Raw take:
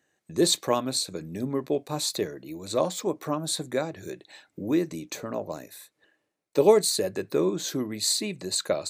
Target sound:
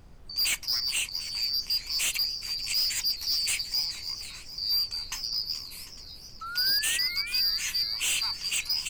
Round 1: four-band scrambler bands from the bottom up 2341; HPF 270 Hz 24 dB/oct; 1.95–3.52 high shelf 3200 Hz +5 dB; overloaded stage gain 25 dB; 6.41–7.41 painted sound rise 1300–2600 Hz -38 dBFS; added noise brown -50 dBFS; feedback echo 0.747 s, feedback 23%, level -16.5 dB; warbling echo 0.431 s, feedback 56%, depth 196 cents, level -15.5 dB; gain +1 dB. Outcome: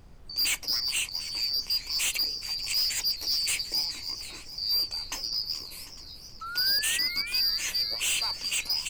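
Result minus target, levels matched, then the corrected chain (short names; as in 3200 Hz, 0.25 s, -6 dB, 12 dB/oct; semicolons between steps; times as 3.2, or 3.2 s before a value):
250 Hz band +3.0 dB
four-band scrambler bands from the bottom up 2341; HPF 990 Hz 24 dB/oct; 1.95–3.52 high shelf 3200 Hz +5 dB; overloaded stage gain 25 dB; 6.41–7.41 painted sound rise 1300–2600 Hz -38 dBFS; added noise brown -50 dBFS; feedback echo 0.747 s, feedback 23%, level -16.5 dB; warbling echo 0.431 s, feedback 56%, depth 196 cents, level -15.5 dB; gain +1 dB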